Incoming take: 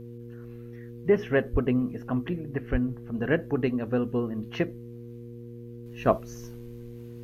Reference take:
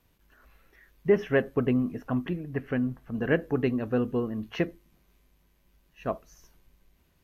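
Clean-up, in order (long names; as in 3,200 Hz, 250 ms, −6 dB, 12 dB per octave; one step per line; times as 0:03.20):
hum removal 118.8 Hz, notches 4
0:01.52–0:01.64: high-pass filter 140 Hz 24 dB per octave
0:02.71–0:02.83: high-pass filter 140 Hz 24 dB per octave
0:05.86: level correction −8.5 dB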